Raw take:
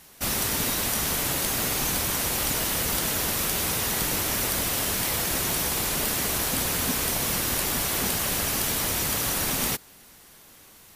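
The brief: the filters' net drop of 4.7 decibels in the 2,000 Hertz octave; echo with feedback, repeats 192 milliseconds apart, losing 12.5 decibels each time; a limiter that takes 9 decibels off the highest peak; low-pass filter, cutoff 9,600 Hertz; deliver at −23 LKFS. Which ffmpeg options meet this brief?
ffmpeg -i in.wav -af "lowpass=9600,equalizer=frequency=2000:width_type=o:gain=-6,alimiter=limit=-24dB:level=0:latency=1,aecho=1:1:192|384|576:0.237|0.0569|0.0137,volume=9dB" out.wav

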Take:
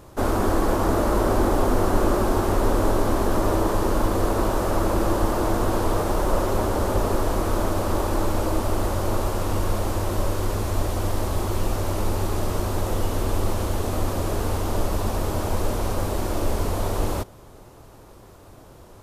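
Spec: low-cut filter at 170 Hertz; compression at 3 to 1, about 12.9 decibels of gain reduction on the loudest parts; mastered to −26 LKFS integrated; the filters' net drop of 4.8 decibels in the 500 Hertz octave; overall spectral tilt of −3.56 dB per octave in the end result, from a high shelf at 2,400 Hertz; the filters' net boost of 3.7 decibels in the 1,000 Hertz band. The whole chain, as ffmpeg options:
ffmpeg -i in.wav -af "highpass=170,equalizer=frequency=500:width_type=o:gain=-8.5,equalizer=frequency=1000:width_type=o:gain=6,highshelf=frequency=2400:gain=5.5,acompressor=threshold=-38dB:ratio=3,volume=10.5dB" out.wav

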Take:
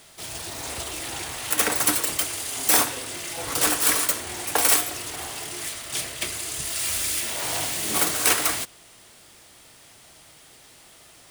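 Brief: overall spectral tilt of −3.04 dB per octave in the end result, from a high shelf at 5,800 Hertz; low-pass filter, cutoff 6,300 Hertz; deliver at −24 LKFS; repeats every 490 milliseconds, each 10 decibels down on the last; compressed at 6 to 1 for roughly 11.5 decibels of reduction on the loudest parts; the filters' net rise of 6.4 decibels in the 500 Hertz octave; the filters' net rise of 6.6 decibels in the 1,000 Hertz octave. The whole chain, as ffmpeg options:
ffmpeg -i in.wav -af "lowpass=6300,equalizer=frequency=500:width_type=o:gain=6,equalizer=frequency=1000:width_type=o:gain=6.5,highshelf=frequency=5800:gain=3.5,acompressor=threshold=-27dB:ratio=6,aecho=1:1:490|980|1470|1960:0.316|0.101|0.0324|0.0104,volume=6dB" out.wav

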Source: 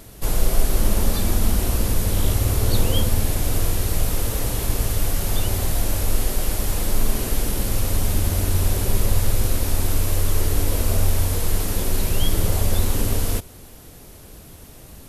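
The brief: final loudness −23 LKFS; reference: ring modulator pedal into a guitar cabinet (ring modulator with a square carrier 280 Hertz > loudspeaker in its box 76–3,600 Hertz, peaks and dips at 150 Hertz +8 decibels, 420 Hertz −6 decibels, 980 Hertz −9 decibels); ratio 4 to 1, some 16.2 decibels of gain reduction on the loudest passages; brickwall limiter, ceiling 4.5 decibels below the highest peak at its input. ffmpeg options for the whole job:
ffmpeg -i in.wav -af "acompressor=threshold=-32dB:ratio=4,alimiter=level_in=1dB:limit=-24dB:level=0:latency=1,volume=-1dB,aeval=exprs='val(0)*sgn(sin(2*PI*280*n/s))':channel_layout=same,highpass=76,equalizer=frequency=150:width_type=q:width=4:gain=8,equalizer=frequency=420:width_type=q:width=4:gain=-6,equalizer=frequency=980:width_type=q:width=4:gain=-9,lowpass=frequency=3600:width=0.5412,lowpass=frequency=3600:width=1.3066,volume=11.5dB" out.wav

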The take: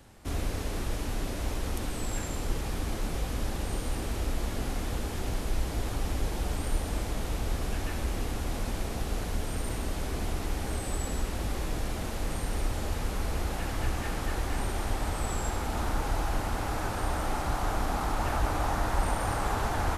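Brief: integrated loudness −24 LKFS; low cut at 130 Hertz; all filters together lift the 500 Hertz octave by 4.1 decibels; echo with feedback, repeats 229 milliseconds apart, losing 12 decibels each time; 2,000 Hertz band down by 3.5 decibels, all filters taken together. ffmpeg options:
ffmpeg -i in.wav -af "highpass=130,equalizer=frequency=500:width_type=o:gain=5.5,equalizer=frequency=2000:width_type=o:gain=-5,aecho=1:1:229|458|687:0.251|0.0628|0.0157,volume=10dB" out.wav

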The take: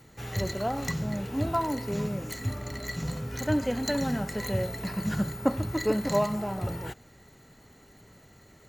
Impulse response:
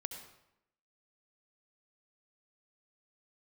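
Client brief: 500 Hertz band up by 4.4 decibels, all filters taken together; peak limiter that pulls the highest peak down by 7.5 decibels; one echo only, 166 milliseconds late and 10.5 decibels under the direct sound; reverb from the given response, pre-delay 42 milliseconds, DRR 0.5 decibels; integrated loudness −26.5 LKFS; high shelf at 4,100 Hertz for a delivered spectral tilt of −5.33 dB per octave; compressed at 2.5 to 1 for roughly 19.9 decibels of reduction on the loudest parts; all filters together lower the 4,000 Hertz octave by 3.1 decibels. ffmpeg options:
-filter_complex "[0:a]equalizer=frequency=500:width_type=o:gain=5.5,equalizer=frequency=4000:width_type=o:gain=-6,highshelf=frequency=4100:gain=4.5,acompressor=threshold=-47dB:ratio=2.5,alimiter=level_in=10dB:limit=-24dB:level=0:latency=1,volume=-10dB,aecho=1:1:166:0.299,asplit=2[link_01][link_02];[1:a]atrim=start_sample=2205,adelay=42[link_03];[link_02][link_03]afir=irnorm=-1:irlink=0,volume=1dB[link_04];[link_01][link_04]amix=inputs=2:normalize=0,volume=15.5dB"

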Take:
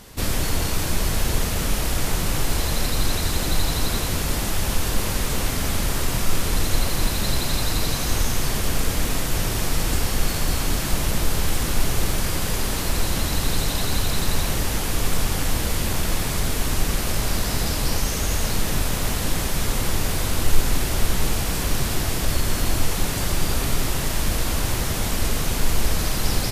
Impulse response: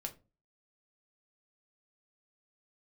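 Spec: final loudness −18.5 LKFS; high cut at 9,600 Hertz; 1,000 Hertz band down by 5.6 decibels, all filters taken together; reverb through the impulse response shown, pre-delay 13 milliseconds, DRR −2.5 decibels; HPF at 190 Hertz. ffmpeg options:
-filter_complex "[0:a]highpass=190,lowpass=9600,equalizer=frequency=1000:width_type=o:gain=-7.5,asplit=2[link_01][link_02];[1:a]atrim=start_sample=2205,adelay=13[link_03];[link_02][link_03]afir=irnorm=-1:irlink=0,volume=4.5dB[link_04];[link_01][link_04]amix=inputs=2:normalize=0,volume=4.5dB"

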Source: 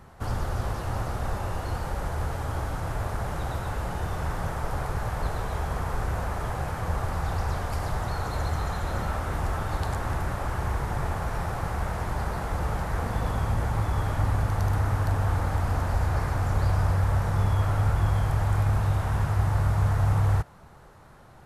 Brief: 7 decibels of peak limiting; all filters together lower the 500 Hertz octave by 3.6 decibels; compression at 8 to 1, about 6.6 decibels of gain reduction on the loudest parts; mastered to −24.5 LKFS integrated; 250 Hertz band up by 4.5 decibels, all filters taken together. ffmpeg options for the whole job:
ffmpeg -i in.wav -af "equalizer=frequency=250:width_type=o:gain=8.5,equalizer=frequency=500:width_type=o:gain=-7,acompressor=threshold=-25dB:ratio=8,volume=9.5dB,alimiter=limit=-15dB:level=0:latency=1" out.wav

